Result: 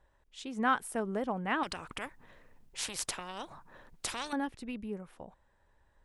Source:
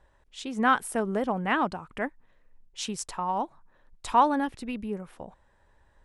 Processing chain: 1.63–4.33 spectral compressor 4:1; gain -6 dB

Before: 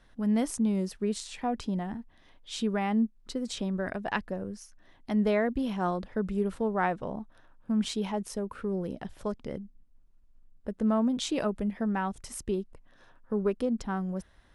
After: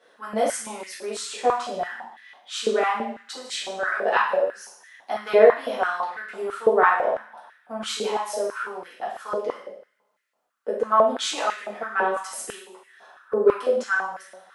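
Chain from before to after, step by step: two-slope reverb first 0.66 s, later 1.7 s, from -25 dB, DRR -8 dB; stepped high-pass 6 Hz 490–1900 Hz; gain -1.5 dB

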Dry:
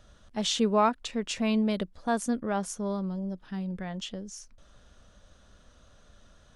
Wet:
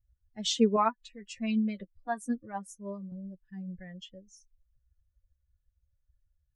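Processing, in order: per-bin expansion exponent 2; 0.76–3.12 flange 1.2 Hz, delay 8.4 ms, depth 1.9 ms, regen +20%; upward expander 1.5:1, over -38 dBFS; gain +4.5 dB

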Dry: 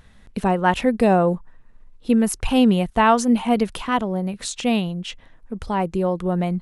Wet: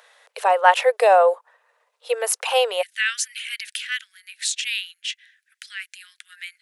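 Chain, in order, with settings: steep high-pass 470 Hz 72 dB/oct, from 2.81 s 1600 Hz; gain +5 dB

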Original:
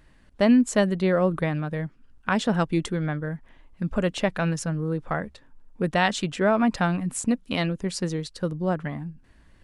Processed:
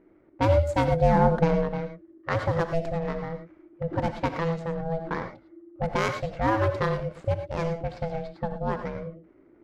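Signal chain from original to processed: median filter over 15 samples; low-pass opened by the level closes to 1800 Hz, open at -16.5 dBFS; 0.88–1.69 low shelf 440 Hz +8.5 dB; ring modulator 330 Hz; non-linear reverb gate 0.13 s rising, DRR 7 dB

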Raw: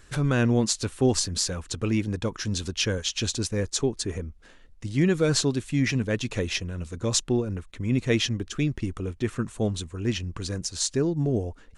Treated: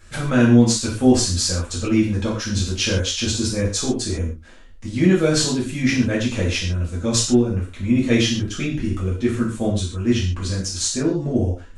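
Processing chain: non-linear reverb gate 0.17 s falling, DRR -7 dB; gain -2 dB

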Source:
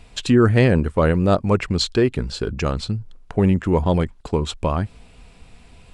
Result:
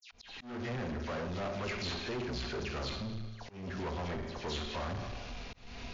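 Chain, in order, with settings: CVSD 32 kbps; dynamic EQ 2600 Hz, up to +4 dB, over -39 dBFS, Q 1.4; reverse; compressor 8:1, threshold -31 dBFS, peak gain reduction 20.5 dB; reverse; dispersion lows, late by 0.115 s, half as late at 2700 Hz; on a send at -3.5 dB: reverb RT60 1.2 s, pre-delay 4 ms; on the sum: soft clip -35.5 dBFS, distortion -7 dB; auto swell 0.274 s; low shelf 360 Hz -4.5 dB; sample leveller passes 1; gain +2.5 dB; MP3 64 kbps 16000 Hz

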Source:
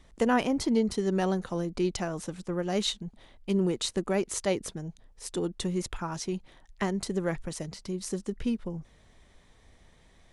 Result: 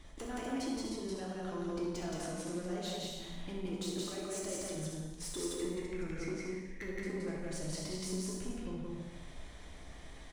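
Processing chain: 5.36–7.17 EQ curve 190 Hz 0 dB, 500 Hz +9 dB, 730 Hz -29 dB, 2200 Hz +10 dB, 3100 Hz -12 dB; compressor 6:1, threshold -42 dBFS, peak gain reduction 20.5 dB; soft clip -39 dBFS, distortion -14 dB; loudspeakers at several distances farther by 22 m -11 dB, 59 m -1 dB, 85 m -6 dB; non-linear reverb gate 0.36 s falling, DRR -1.5 dB; gain +1 dB

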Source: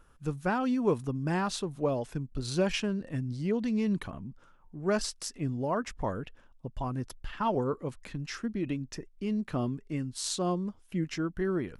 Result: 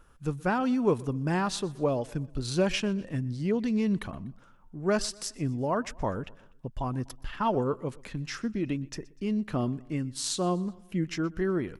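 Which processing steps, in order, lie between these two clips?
feedback echo 0.123 s, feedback 50%, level -23 dB; gain +2 dB

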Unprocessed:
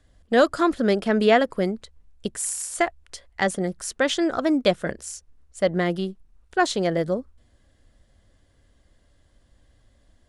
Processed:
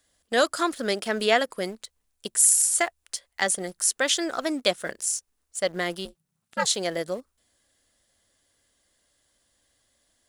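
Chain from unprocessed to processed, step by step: RIAA curve recording; 6.05–6.67 ring modulator 160 Hz; in parallel at -8 dB: sample gate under -33.5 dBFS; on the sum: gain -5.5 dB

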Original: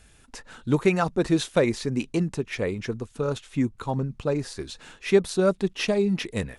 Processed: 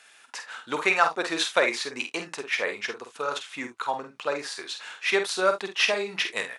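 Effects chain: HPF 1000 Hz 12 dB/oct; high shelf 6300 Hz -11.5 dB; on a send: early reflections 48 ms -7.5 dB, 73 ms -18 dB; on the sum: gain +8.5 dB

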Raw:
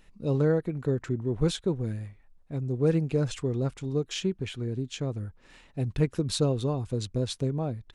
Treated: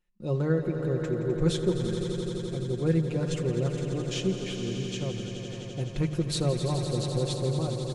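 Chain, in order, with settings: notches 50/100/150/200 Hz; gate with hold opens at -44 dBFS; comb 5.6 ms; on a send: swelling echo 85 ms, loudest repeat 5, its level -11 dB; on the sum: gain -2.5 dB

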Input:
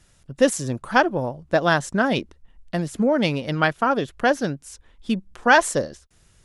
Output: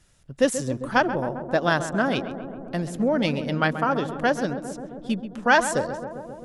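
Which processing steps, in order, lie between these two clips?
darkening echo 0.133 s, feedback 82%, low-pass 1400 Hz, level -10 dB; gain -3 dB

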